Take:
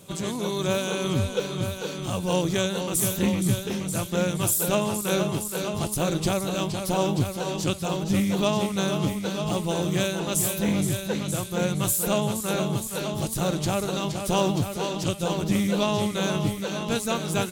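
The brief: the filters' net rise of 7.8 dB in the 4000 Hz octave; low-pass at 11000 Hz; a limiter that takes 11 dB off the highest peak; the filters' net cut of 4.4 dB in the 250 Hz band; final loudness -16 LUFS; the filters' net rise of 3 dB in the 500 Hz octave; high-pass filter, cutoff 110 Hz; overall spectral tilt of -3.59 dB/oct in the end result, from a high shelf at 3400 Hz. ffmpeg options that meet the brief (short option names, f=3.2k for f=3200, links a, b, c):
-af "highpass=110,lowpass=11k,equalizer=f=250:t=o:g=-8,equalizer=f=500:t=o:g=5.5,highshelf=f=3.4k:g=7,equalizer=f=4k:t=o:g=5,volume=10dB,alimiter=limit=-5.5dB:level=0:latency=1"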